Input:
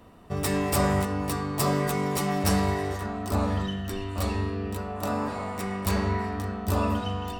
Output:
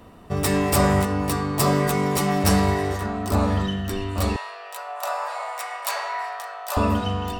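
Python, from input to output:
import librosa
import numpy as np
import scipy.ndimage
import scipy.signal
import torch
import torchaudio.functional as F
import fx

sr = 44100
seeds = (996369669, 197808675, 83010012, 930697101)

y = fx.steep_highpass(x, sr, hz=580.0, slope=48, at=(4.36, 6.77))
y = y * librosa.db_to_amplitude(5.0)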